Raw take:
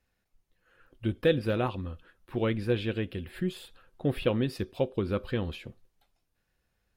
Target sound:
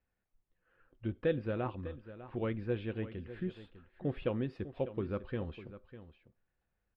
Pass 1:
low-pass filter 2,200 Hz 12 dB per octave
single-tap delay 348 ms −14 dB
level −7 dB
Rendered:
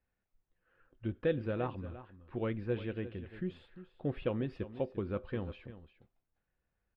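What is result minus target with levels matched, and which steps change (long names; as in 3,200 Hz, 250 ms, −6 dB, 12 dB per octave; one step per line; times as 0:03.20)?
echo 252 ms early
change: single-tap delay 600 ms −14 dB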